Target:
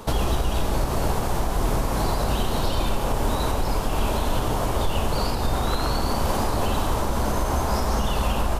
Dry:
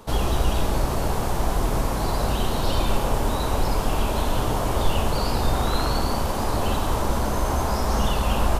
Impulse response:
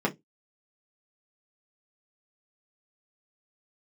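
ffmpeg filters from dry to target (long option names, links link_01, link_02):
-af "alimiter=limit=-19.5dB:level=0:latency=1:release=415,volume=6.5dB"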